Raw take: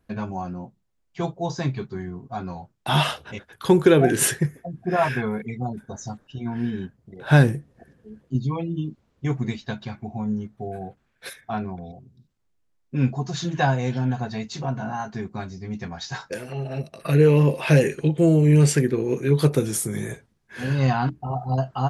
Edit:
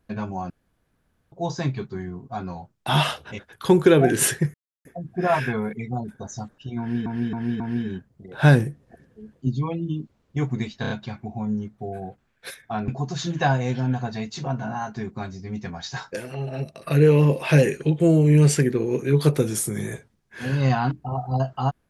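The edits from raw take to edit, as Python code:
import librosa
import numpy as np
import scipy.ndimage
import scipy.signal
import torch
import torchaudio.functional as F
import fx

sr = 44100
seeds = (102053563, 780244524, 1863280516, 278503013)

y = fx.edit(x, sr, fx.room_tone_fill(start_s=0.5, length_s=0.82),
    fx.insert_silence(at_s=4.54, length_s=0.31),
    fx.repeat(start_s=6.48, length_s=0.27, count=4),
    fx.stutter(start_s=9.69, slice_s=0.03, count=4),
    fx.cut(start_s=11.67, length_s=1.39), tone=tone)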